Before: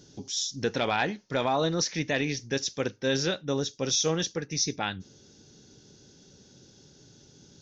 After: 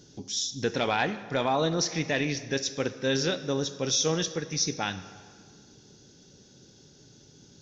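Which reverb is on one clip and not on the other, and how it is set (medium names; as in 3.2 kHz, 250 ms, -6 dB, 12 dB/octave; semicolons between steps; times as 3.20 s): plate-style reverb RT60 1.9 s, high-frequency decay 0.75×, DRR 11.5 dB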